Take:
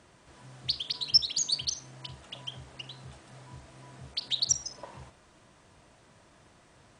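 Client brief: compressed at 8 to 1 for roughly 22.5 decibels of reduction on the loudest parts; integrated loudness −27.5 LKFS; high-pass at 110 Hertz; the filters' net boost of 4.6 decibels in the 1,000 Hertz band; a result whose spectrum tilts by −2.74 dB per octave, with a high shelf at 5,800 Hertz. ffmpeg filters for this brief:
ffmpeg -i in.wav -af "highpass=110,equalizer=frequency=1000:width_type=o:gain=5.5,highshelf=frequency=5800:gain=-8.5,acompressor=threshold=-44dB:ratio=8,volume=21.5dB" out.wav

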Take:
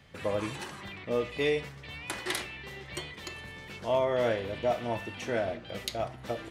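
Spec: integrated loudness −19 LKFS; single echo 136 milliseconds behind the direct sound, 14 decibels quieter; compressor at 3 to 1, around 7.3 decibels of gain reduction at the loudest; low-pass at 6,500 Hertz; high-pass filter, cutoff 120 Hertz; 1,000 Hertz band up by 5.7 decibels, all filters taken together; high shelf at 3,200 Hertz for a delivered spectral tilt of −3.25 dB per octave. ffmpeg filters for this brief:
ffmpeg -i in.wav -af "highpass=120,lowpass=6500,equalizer=frequency=1000:width_type=o:gain=8.5,highshelf=frequency=3200:gain=-8,acompressor=threshold=-29dB:ratio=3,aecho=1:1:136:0.2,volume=16.5dB" out.wav

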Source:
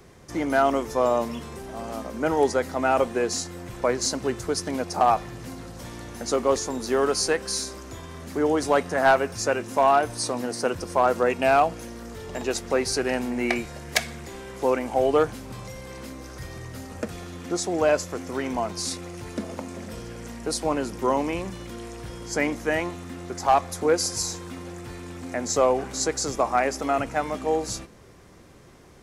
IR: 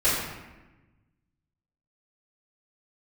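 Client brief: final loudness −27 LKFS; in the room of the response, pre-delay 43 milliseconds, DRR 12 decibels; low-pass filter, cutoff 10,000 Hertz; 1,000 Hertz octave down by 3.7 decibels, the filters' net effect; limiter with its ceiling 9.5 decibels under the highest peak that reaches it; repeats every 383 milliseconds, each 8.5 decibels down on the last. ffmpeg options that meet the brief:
-filter_complex "[0:a]lowpass=10000,equalizer=frequency=1000:width_type=o:gain=-5.5,alimiter=limit=-18.5dB:level=0:latency=1,aecho=1:1:383|766|1149|1532:0.376|0.143|0.0543|0.0206,asplit=2[link_01][link_02];[1:a]atrim=start_sample=2205,adelay=43[link_03];[link_02][link_03]afir=irnorm=-1:irlink=0,volume=-27dB[link_04];[link_01][link_04]amix=inputs=2:normalize=0,volume=2.5dB"

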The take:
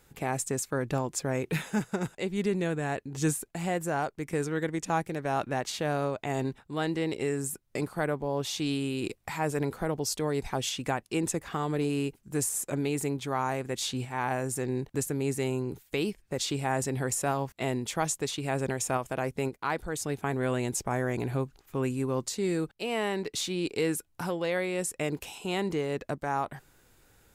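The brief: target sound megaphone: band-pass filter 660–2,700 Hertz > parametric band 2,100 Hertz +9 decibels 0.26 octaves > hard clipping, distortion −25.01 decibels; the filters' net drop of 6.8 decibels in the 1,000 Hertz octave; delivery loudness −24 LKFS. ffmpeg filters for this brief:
ffmpeg -i in.wav -af "highpass=660,lowpass=2700,equalizer=frequency=1000:width_type=o:gain=-7.5,equalizer=frequency=2100:width_type=o:width=0.26:gain=9,asoftclip=type=hard:threshold=-24dB,volume=15dB" out.wav

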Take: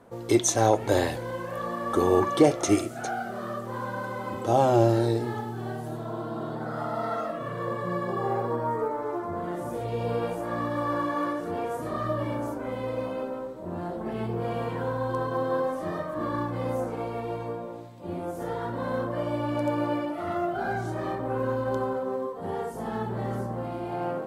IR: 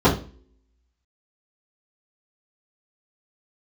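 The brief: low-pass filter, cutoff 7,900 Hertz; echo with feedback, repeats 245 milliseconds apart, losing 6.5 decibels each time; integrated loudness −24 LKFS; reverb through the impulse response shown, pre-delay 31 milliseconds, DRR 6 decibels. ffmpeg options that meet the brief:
-filter_complex "[0:a]lowpass=7900,aecho=1:1:245|490|735|980|1225|1470:0.473|0.222|0.105|0.0491|0.0231|0.0109,asplit=2[link_01][link_02];[1:a]atrim=start_sample=2205,adelay=31[link_03];[link_02][link_03]afir=irnorm=-1:irlink=0,volume=-28dB[link_04];[link_01][link_04]amix=inputs=2:normalize=0,volume=1.5dB"

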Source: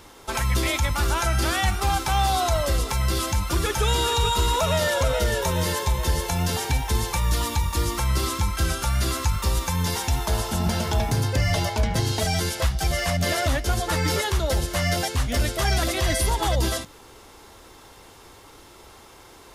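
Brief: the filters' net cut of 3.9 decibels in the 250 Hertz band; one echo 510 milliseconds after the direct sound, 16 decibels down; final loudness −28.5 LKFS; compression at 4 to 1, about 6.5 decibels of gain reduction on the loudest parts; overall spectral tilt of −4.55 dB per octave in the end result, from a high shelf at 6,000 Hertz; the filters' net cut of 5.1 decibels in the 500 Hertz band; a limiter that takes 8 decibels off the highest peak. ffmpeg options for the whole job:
ffmpeg -i in.wav -af "equalizer=frequency=250:width_type=o:gain=-4.5,equalizer=frequency=500:width_type=o:gain=-5.5,highshelf=frequency=6000:gain=-6,acompressor=threshold=-26dB:ratio=4,alimiter=level_in=0.5dB:limit=-24dB:level=0:latency=1,volume=-0.5dB,aecho=1:1:510:0.158,volume=4.5dB" out.wav

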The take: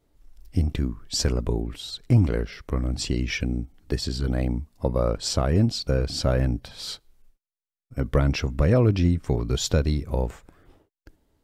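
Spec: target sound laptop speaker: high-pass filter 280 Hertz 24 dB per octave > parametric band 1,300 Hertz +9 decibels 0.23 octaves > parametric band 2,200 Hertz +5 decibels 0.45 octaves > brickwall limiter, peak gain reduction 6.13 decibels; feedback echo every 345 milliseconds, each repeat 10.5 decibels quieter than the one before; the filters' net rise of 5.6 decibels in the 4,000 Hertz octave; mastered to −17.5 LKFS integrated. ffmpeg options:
ffmpeg -i in.wav -af "highpass=frequency=280:width=0.5412,highpass=frequency=280:width=1.3066,equalizer=frequency=1300:width_type=o:width=0.23:gain=9,equalizer=frequency=2200:width_type=o:width=0.45:gain=5,equalizer=frequency=4000:width_type=o:gain=6.5,aecho=1:1:345|690|1035:0.299|0.0896|0.0269,volume=11dB,alimiter=limit=-5dB:level=0:latency=1" out.wav

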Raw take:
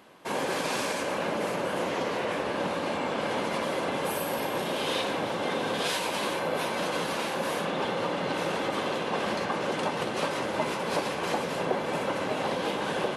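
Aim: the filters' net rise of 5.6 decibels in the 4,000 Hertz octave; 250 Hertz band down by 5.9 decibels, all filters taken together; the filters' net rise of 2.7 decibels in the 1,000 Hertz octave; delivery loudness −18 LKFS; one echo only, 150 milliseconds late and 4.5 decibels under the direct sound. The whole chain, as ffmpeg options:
ffmpeg -i in.wav -af "equalizer=frequency=250:width_type=o:gain=-8.5,equalizer=frequency=1000:width_type=o:gain=3.5,equalizer=frequency=4000:width_type=o:gain=7,aecho=1:1:150:0.596,volume=8.5dB" out.wav

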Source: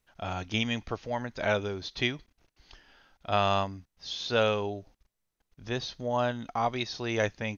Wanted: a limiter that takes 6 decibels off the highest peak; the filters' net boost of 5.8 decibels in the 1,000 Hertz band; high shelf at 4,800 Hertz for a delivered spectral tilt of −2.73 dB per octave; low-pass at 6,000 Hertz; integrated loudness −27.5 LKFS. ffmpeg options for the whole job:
ffmpeg -i in.wav -af "lowpass=6000,equalizer=frequency=1000:width_type=o:gain=7.5,highshelf=frequency=4800:gain=7,volume=2dB,alimiter=limit=-12dB:level=0:latency=1" out.wav

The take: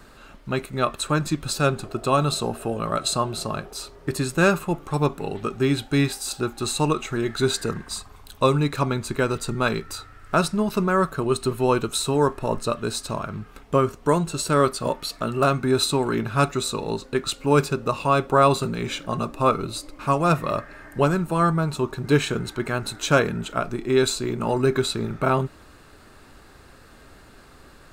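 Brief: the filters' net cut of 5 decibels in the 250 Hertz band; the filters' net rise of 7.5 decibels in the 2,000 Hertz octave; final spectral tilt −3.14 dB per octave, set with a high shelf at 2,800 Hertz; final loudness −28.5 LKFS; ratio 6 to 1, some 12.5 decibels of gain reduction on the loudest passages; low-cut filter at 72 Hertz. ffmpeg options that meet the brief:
ffmpeg -i in.wav -af "highpass=72,equalizer=frequency=250:width_type=o:gain=-7.5,equalizer=frequency=2000:width_type=o:gain=9,highshelf=frequency=2800:gain=5,acompressor=threshold=-24dB:ratio=6" out.wav

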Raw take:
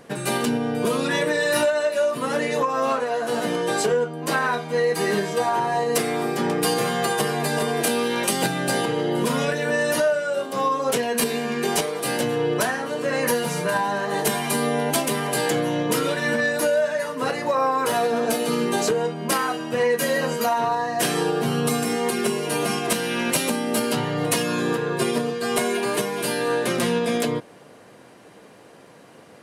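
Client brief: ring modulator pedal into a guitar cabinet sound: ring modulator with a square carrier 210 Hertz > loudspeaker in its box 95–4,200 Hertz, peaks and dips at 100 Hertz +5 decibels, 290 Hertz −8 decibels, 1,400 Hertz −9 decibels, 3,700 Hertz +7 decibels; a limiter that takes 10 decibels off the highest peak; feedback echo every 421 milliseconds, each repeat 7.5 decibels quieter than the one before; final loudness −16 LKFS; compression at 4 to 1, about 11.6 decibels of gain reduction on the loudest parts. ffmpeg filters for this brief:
ffmpeg -i in.wav -af "acompressor=threshold=-32dB:ratio=4,alimiter=level_in=6.5dB:limit=-24dB:level=0:latency=1,volume=-6.5dB,aecho=1:1:421|842|1263|1684|2105:0.422|0.177|0.0744|0.0312|0.0131,aeval=exprs='val(0)*sgn(sin(2*PI*210*n/s))':channel_layout=same,highpass=95,equalizer=frequency=100:width_type=q:width=4:gain=5,equalizer=frequency=290:width_type=q:width=4:gain=-8,equalizer=frequency=1400:width_type=q:width=4:gain=-9,equalizer=frequency=3700:width_type=q:width=4:gain=7,lowpass=frequency=4200:width=0.5412,lowpass=frequency=4200:width=1.3066,volume=23dB" out.wav

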